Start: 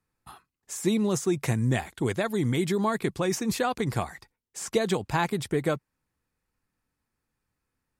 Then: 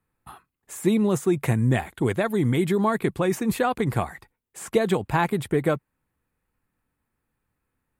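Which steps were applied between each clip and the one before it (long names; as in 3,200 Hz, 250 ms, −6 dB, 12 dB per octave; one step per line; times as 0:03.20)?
parametric band 5,500 Hz −13 dB 0.97 octaves
level +4 dB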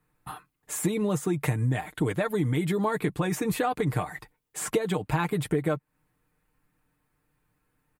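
comb filter 6.6 ms, depth 62%
downward compressor 4 to 1, threshold −28 dBFS, peak gain reduction 14 dB
level +3.5 dB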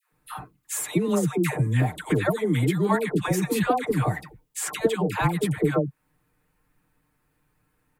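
all-pass dispersion lows, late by 122 ms, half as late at 730 Hz
level +3.5 dB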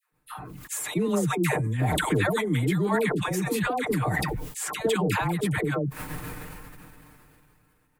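shaped tremolo triangle 7.2 Hz, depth 65%
level that may fall only so fast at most 20 dB per second
level −1.5 dB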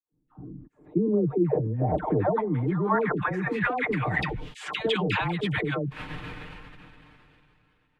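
low-pass filter sweep 290 Hz → 3,200 Hz, 0:00.79–0:04.34
level −2 dB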